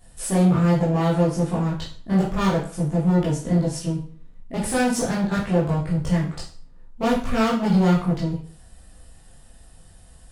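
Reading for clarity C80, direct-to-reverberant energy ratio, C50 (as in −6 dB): 10.5 dB, −7.5 dB, 5.5 dB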